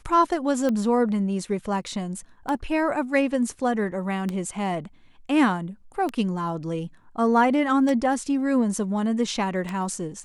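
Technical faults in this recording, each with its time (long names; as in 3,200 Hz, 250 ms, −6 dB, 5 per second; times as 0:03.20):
scratch tick 33 1/3 rpm −15 dBFS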